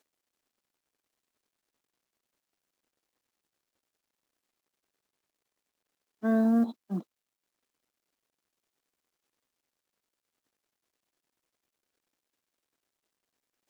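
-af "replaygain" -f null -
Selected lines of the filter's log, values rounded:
track_gain = +33.8 dB
track_peak = 0.090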